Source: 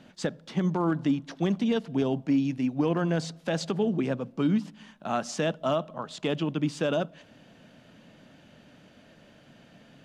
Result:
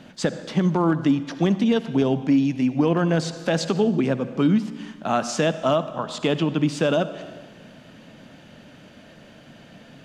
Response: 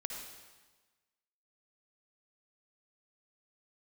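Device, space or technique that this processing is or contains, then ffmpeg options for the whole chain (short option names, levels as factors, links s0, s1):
compressed reverb return: -filter_complex "[0:a]asplit=2[s0][s1];[1:a]atrim=start_sample=2205[s2];[s1][s2]afir=irnorm=-1:irlink=0,acompressor=threshold=0.0355:ratio=6,volume=0.668[s3];[s0][s3]amix=inputs=2:normalize=0,volume=1.58"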